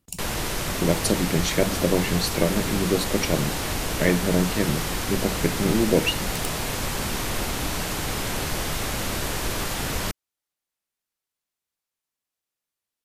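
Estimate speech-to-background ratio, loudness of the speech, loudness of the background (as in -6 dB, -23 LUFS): 2.5 dB, -25.0 LUFS, -27.5 LUFS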